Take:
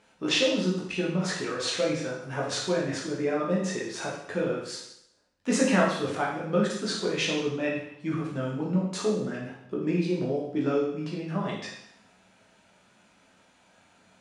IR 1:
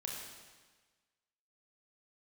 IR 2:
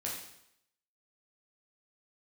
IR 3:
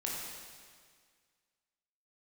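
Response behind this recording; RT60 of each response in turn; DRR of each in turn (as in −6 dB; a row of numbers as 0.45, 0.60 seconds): 2; 1.4, 0.75, 1.8 seconds; −2.0, −4.5, −4.0 decibels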